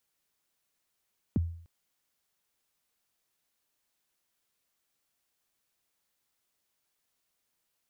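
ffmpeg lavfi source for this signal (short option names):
-f lavfi -i "aevalsrc='0.0891*pow(10,-3*t/0.56)*sin(2*PI*(320*0.021/log(84/320)*(exp(log(84/320)*min(t,0.021)/0.021)-1)+84*max(t-0.021,0)))':d=0.3:s=44100"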